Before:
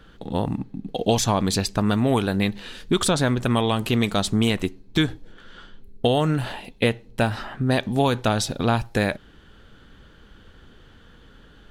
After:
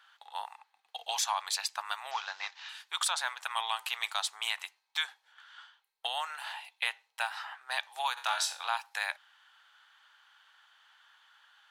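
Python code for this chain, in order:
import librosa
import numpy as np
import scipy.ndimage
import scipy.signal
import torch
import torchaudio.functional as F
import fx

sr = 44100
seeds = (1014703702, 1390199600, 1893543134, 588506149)

y = fx.cvsd(x, sr, bps=32000, at=(2.11, 2.69))
y = scipy.signal.sosfilt(scipy.signal.ellip(4, 1.0, 70, 840.0, 'highpass', fs=sr, output='sos'), y)
y = fx.room_flutter(y, sr, wall_m=3.8, rt60_s=0.3, at=(8.16, 8.68), fade=0.02)
y = y * librosa.db_to_amplitude(-5.0)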